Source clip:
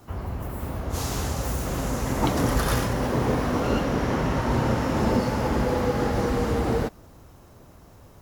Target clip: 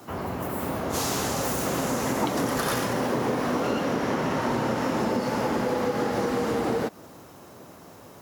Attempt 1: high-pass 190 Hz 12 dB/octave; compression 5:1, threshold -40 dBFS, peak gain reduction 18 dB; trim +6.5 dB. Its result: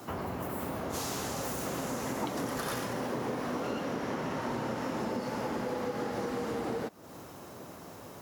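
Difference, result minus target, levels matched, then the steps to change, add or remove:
compression: peak gain reduction +8.5 dB
change: compression 5:1, threshold -29.5 dBFS, peak gain reduction 10 dB

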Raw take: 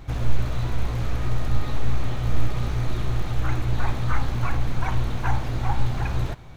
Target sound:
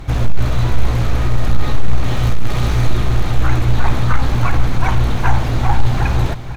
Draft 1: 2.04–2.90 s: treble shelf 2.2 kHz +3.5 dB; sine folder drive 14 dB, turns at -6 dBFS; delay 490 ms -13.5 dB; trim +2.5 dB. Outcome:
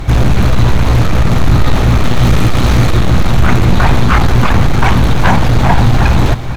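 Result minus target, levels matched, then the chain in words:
sine folder: distortion +23 dB
2.04–2.90 s: treble shelf 2.2 kHz +3.5 dB; sine folder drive 4 dB, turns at -6 dBFS; delay 490 ms -13.5 dB; trim +2.5 dB

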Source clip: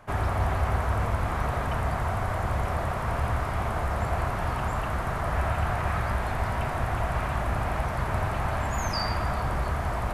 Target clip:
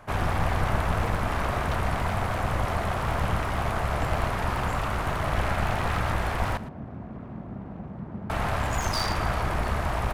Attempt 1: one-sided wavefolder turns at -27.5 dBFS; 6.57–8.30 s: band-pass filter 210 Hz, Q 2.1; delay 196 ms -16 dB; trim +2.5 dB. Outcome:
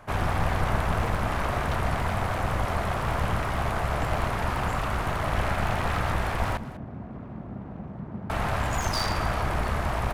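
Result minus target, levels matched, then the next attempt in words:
echo 82 ms late
one-sided wavefolder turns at -27.5 dBFS; 6.57–8.30 s: band-pass filter 210 Hz, Q 2.1; delay 114 ms -16 dB; trim +2.5 dB

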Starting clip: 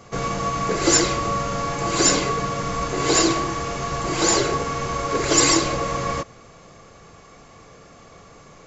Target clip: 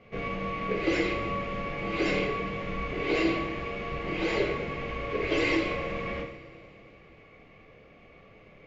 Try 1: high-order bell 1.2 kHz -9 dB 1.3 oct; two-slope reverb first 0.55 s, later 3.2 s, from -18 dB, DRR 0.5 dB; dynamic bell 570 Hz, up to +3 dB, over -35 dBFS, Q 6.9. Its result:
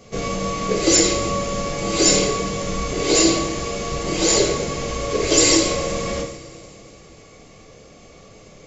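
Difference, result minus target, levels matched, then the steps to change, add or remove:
2 kHz band -7.5 dB
add first: four-pole ladder low-pass 2.8 kHz, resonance 45%

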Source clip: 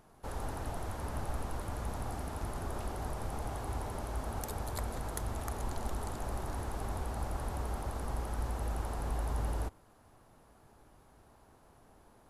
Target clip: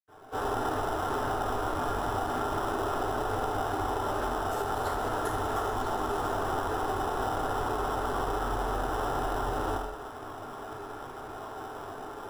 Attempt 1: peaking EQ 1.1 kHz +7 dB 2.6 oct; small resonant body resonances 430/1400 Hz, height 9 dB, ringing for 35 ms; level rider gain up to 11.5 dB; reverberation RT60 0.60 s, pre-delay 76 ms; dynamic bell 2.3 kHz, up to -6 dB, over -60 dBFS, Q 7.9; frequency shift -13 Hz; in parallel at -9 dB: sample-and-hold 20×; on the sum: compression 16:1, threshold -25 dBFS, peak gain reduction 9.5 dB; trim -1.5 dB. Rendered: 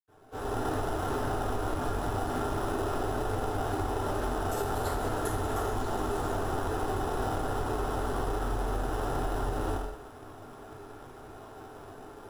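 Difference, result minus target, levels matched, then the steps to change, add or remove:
1 kHz band -3.0 dB
change: peaking EQ 1.1 kHz +16.5 dB 2.6 oct

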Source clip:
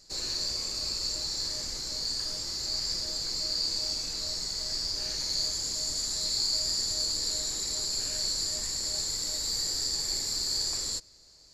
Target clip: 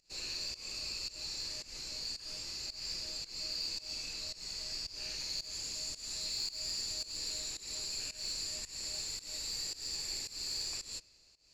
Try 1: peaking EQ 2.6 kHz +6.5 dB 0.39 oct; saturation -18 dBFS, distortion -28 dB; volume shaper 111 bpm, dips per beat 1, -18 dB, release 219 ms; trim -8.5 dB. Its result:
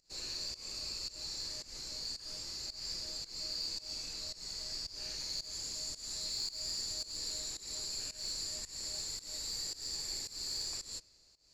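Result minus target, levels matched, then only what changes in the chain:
2 kHz band -4.5 dB
change: peaking EQ 2.6 kHz +15.5 dB 0.39 oct

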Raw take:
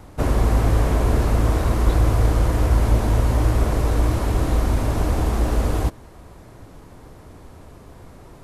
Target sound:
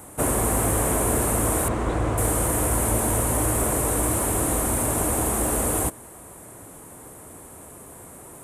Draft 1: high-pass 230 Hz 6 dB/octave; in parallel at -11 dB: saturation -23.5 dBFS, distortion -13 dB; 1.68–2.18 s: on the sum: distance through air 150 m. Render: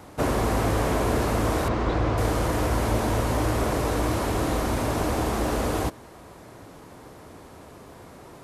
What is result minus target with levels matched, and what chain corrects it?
8 kHz band -11.5 dB
high-pass 230 Hz 6 dB/octave; resonant high shelf 6.7 kHz +11.5 dB, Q 3; in parallel at -11 dB: saturation -23.5 dBFS, distortion -12 dB; 1.68–2.18 s: on the sum: distance through air 150 m

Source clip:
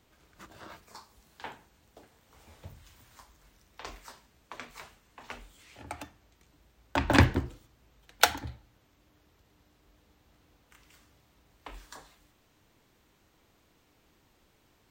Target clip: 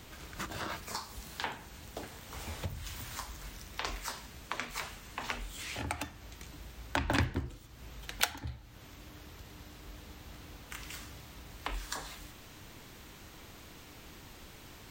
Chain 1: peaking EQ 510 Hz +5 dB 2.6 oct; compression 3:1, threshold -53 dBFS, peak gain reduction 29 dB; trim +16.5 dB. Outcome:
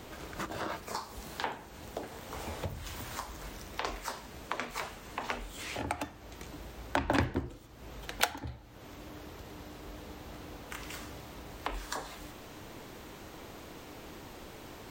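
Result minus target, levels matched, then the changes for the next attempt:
500 Hz band +5.5 dB
change: peaking EQ 510 Hz -4 dB 2.6 oct

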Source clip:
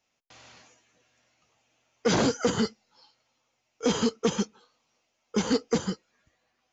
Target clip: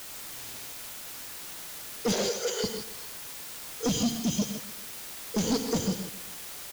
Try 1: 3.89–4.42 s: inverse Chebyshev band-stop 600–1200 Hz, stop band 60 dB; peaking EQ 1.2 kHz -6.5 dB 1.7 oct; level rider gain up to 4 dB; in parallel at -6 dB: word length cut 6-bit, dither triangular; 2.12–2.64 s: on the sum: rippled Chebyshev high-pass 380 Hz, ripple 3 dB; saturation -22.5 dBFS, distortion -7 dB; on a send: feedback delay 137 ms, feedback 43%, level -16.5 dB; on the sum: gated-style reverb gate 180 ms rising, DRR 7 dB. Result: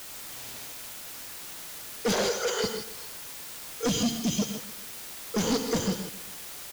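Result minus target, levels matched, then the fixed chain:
1 kHz band +2.5 dB
3.89–4.42 s: inverse Chebyshev band-stop 600–1200 Hz, stop band 60 dB; peaking EQ 1.2 kHz -18 dB 1.7 oct; level rider gain up to 4 dB; in parallel at -6 dB: word length cut 6-bit, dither triangular; 2.12–2.64 s: on the sum: rippled Chebyshev high-pass 380 Hz, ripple 3 dB; saturation -22.5 dBFS, distortion -8 dB; on a send: feedback delay 137 ms, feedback 43%, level -16.5 dB; on the sum: gated-style reverb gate 180 ms rising, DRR 7 dB

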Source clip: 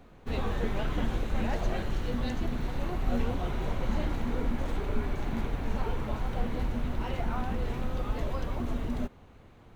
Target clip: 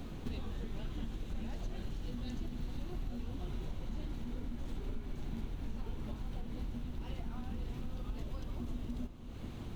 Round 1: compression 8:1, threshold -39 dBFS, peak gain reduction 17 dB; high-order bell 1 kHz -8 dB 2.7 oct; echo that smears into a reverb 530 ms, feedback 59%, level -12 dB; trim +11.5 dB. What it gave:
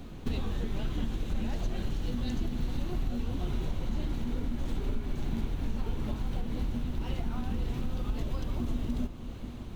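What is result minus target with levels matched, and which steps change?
compression: peak gain reduction -8.5 dB
change: compression 8:1, threshold -48.5 dBFS, peak gain reduction 25.5 dB

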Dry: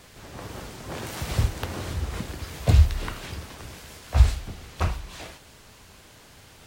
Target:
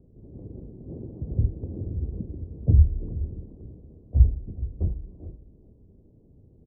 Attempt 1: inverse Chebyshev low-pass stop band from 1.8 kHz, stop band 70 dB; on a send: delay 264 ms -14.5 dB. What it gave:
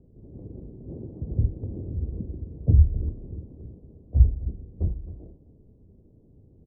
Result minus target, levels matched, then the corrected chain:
echo 160 ms early
inverse Chebyshev low-pass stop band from 1.8 kHz, stop band 70 dB; on a send: delay 424 ms -14.5 dB

